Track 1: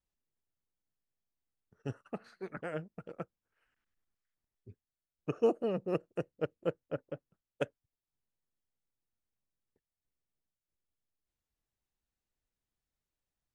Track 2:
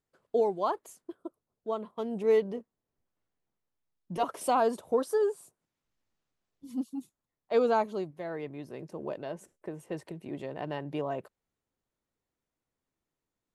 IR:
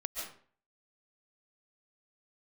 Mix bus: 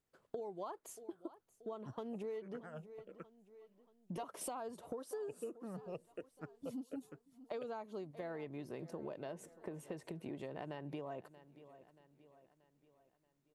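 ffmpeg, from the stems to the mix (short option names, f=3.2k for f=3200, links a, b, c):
-filter_complex "[0:a]asplit=2[a][b];[b]afreqshift=-1.3[c];[a][c]amix=inputs=2:normalize=1,volume=-7.5dB[d];[1:a]acompressor=threshold=-37dB:ratio=2,volume=-0.5dB,asplit=2[e][f];[f]volume=-21.5dB,aecho=0:1:631|1262|1893|2524|3155|3786|4417:1|0.48|0.23|0.111|0.0531|0.0255|0.0122[g];[d][e][g]amix=inputs=3:normalize=0,acompressor=threshold=-41dB:ratio=6"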